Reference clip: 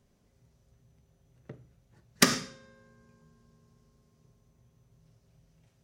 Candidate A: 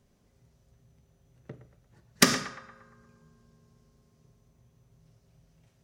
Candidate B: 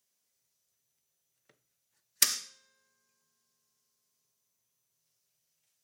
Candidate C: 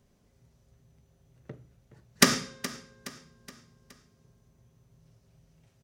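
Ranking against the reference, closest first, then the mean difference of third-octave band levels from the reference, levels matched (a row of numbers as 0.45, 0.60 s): A, C, B; 2.0, 5.0, 10.0 dB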